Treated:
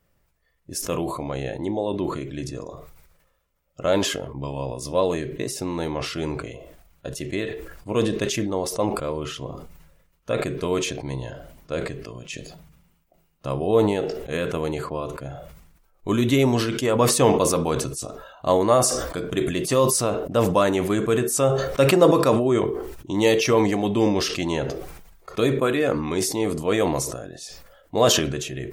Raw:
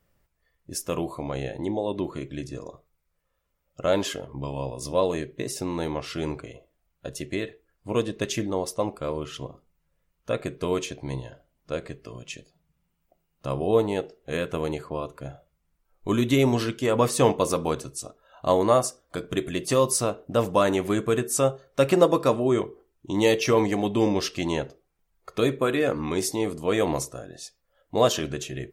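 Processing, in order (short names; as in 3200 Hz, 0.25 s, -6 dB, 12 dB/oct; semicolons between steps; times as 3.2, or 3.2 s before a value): sustainer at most 49 dB/s; gain +1.5 dB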